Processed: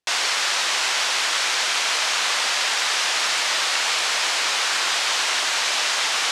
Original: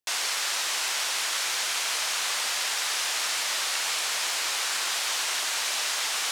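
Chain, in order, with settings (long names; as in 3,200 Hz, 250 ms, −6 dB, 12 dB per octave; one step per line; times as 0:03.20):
high-frequency loss of the air 61 metres
level +8.5 dB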